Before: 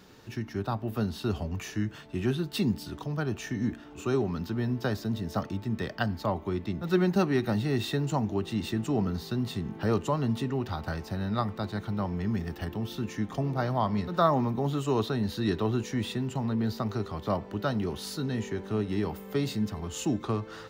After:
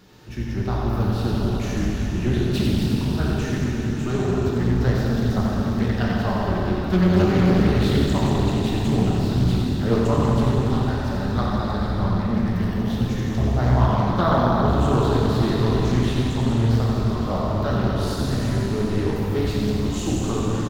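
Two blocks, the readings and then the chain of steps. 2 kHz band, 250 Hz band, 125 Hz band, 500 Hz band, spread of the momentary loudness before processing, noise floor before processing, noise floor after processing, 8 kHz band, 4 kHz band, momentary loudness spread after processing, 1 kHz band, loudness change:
+7.0 dB, +8.5 dB, +11.0 dB, +7.0 dB, 6 LU, −46 dBFS, −26 dBFS, +6.5 dB, +7.0 dB, 6 LU, +7.0 dB, +9.0 dB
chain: sub-octave generator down 1 octave, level −4 dB
low-shelf EQ 180 Hz +5 dB
hum removal 54.08 Hz, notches 28
on a send: single-tap delay 90 ms −7 dB
on the sum: dense smooth reverb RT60 4.3 s, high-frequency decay 1×, DRR −5 dB
highs frequency-modulated by the lows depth 0.4 ms

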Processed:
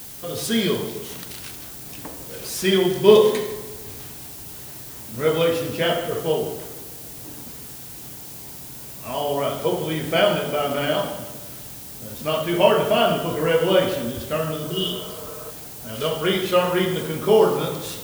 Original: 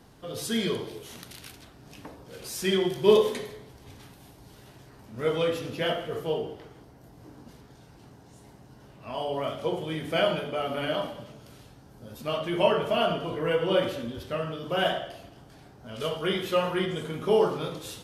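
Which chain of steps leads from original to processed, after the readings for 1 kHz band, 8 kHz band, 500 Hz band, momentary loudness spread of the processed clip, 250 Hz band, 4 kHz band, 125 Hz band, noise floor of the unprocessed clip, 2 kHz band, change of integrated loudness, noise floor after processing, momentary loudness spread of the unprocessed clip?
+6.0 dB, +11.0 dB, +6.5 dB, 17 LU, +6.5 dB, +6.5 dB, +7.0 dB, −53 dBFS, +6.0 dB, +6.5 dB, −38 dBFS, 20 LU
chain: healed spectral selection 0:14.70–0:15.48, 440–2,800 Hz before
background noise blue −45 dBFS
on a send: feedback echo with a low-pass in the loop 152 ms, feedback 50%, level −13 dB
on the sum: level +6.5 dB

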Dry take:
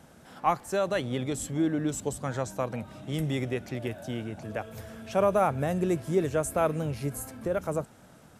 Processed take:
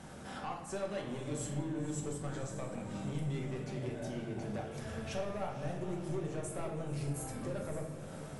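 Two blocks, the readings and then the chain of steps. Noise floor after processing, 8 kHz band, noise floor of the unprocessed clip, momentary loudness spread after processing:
−46 dBFS, −7.0 dB, −54 dBFS, 4 LU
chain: downward compressor 4 to 1, threshold −42 dBFS, peak gain reduction 19 dB
soft clipping −39 dBFS, distortion −13 dB
feedback delay with all-pass diffusion 531 ms, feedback 49%, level −11 dB
rectangular room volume 310 cubic metres, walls mixed, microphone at 1.1 metres
level +2.5 dB
AC-3 64 kbit/s 48,000 Hz

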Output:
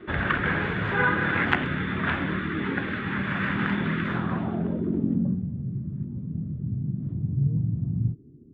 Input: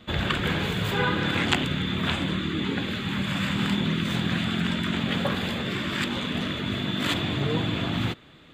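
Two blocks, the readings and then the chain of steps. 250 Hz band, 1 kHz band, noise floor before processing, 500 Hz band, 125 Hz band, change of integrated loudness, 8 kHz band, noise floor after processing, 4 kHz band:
−0.5 dB, +1.0 dB, −50 dBFS, −2.0 dB, +1.5 dB, −0.5 dB, below −25 dB, −42 dBFS, −13.5 dB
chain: noise in a band 230–420 Hz −41 dBFS
low-pass filter sweep 1,700 Hz → 140 Hz, 0:04.05–0:05.49
level −1.5 dB

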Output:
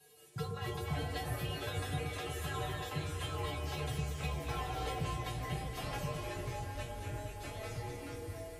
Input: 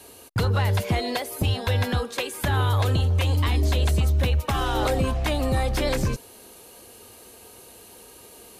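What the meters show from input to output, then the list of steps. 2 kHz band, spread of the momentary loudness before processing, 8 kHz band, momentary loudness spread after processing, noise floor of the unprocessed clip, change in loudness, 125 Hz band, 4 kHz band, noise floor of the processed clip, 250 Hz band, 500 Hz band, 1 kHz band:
−11.5 dB, 5 LU, −11.0 dB, 5 LU, −48 dBFS, −15.5 dB, −15.5 dB, −12.5 dB, −48 dBFS, −14.0 dB, −13.0 dB, −11.0 dB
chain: tuned comb filter 150 Hz, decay 0.2 s, harmonics odd, mix 100%
delay with pitch and tempo change per echo 162 ms, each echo −4 semitones, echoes 2
delay that swaps between a low-pass and a high-pass 117 ms, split 1,200 Hz, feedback 83%, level −6 dB
level −3 dB

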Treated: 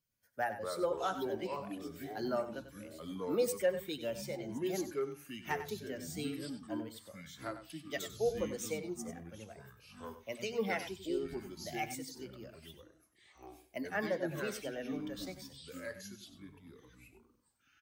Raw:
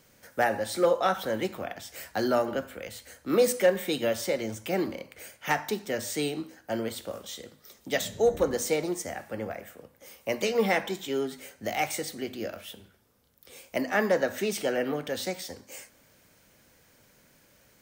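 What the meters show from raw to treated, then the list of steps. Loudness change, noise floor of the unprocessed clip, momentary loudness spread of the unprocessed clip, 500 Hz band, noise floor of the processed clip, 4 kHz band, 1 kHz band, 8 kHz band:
−9.5 dB, −62 dBFS, 16 LU, −9.5 dB, −71 dBFS, −10.0 dB, −10.0 dB, −10.0 dB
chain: spectral dynamics exaggerated over time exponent 1.5
delay with pitch and tempo change per echo 110 ms, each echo −5 semitones, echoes 3, each echo −6 dB
single-tap delay 95 ms −11.5 dB
level −8 dB

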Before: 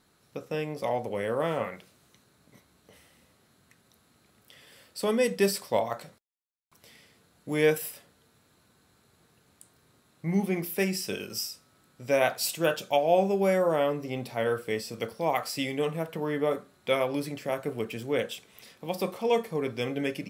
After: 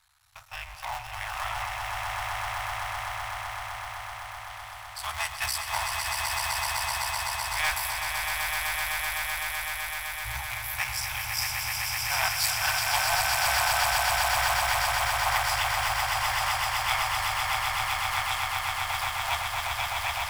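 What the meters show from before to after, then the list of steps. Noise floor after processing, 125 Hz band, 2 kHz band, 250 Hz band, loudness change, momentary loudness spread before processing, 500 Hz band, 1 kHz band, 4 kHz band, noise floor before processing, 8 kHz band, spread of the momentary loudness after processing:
−41 dBFS, −2.0 dB, +10.0 dB, below −25 dB, +1.5 dB, 12 LU, −13.0 dB, +7.0 dB, +9.5 dB, −66 dBFS, +10.0 dB, 11 LU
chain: sub-harmonics by changed cycles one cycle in 3, muted
inverse Chebyshev band-stop filter 160–520 Hz, stop band 40 dB
echo that builds up and dies away 127 ms, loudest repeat 8, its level −4.5 dB
level +3 dB

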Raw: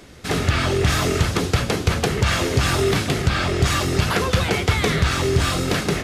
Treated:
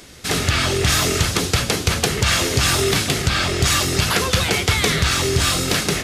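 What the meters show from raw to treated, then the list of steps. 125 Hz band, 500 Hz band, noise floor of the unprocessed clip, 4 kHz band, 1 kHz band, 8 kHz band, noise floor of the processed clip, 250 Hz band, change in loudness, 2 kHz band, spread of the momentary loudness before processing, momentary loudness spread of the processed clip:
−1.0 dB, −0.5 dB, −29 dBFS, +6.0 dB, +0.5 dB, +8.5 dB, −27 dBFS, −1.0 dB, +2.5 dB, +3.0 dB, 2 LU, 3 LU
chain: high-shelf EQ 2,600 Hz +10.5 dB
level −1 dB

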